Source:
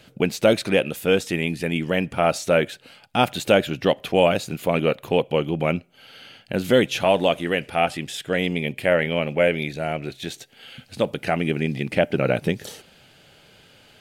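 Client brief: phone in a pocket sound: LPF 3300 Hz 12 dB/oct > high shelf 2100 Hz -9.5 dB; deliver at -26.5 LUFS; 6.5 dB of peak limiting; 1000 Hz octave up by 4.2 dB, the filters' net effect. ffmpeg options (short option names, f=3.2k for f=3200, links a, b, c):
-af "equalizer=f=1k:t=o:g=8.5,alimiter=limit=-6dB:level=0:latency=1,lowpass=3.3k,highshelf=f=2.1k:g=-9.5,volume=-3.5dB"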